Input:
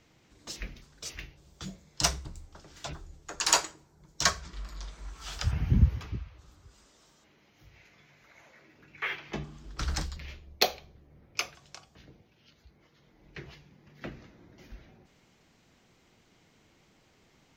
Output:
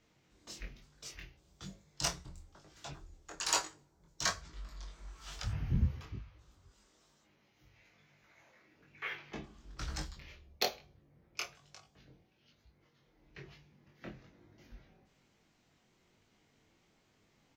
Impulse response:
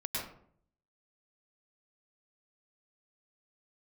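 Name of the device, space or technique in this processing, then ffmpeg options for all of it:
double-tracked vocal: -filter_complex "[0:a]asplit=2[link_01][link_02];[link_02]adelay=29,volume=-13dB[link_03];[link_01][link_03]amix=inputs=2:normalize=0,flanger=delay=19.5:depth=4.2:speed=1.1,volume=-4.5dB"

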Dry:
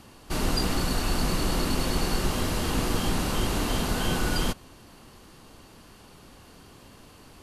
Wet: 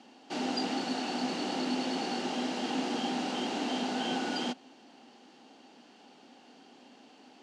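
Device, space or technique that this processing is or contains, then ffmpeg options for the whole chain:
television speaker: -af "highpass=frequency=230:width=0.5412,highpass=frequency=230:width=1.3066,equalizer=frequency=250:width_type=q:width=4:gain=9,equalizer=frequency=790:width_type=q:width=4:gain=10,equalizer=frequency=1100:width_type=q:width=4:gain=-8,equalizer=frequency=3000:width_type=q:width=4:gain=4,lowpass=frequency=6600:width=0.5412,lowpass=frequency=6600:width=1.3066,volume=-6dB"

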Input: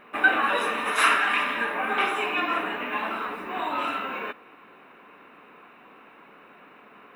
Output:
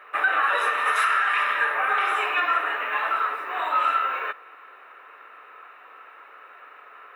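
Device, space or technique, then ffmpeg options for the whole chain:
laptop speaker: -af "highpass=frequency=440:width=0.5412,highpass=frequency=440:width=1.3066,equalizer=frequency=1300:width_type=o:width=0.24:gain=11,equalizer=frequency=1800:width_type=o:width=0.28:gain=7.5,alimiter=limit=-12.5dB:level=0:latency=1:release=119"

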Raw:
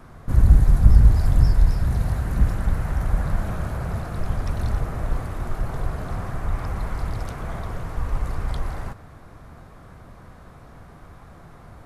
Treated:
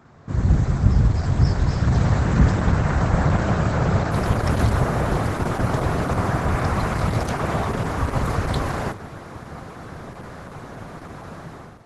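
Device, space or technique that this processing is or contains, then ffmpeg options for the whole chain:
video call: -af "highpass=100,dynaudnorm=framelen=170:gausssize=5:maxgain=14dB,volume=-2dB" -ar 48000 -c:a libopus -b:a 12k

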